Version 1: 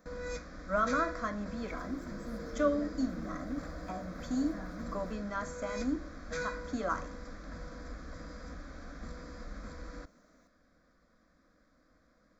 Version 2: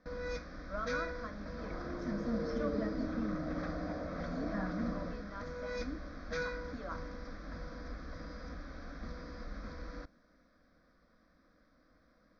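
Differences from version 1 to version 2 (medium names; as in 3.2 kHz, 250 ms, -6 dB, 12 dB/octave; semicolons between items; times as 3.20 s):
speech -10.5 dB; second sound +7.0 dB; master: add steep low-pass 5.9 kHz 72 dB/octave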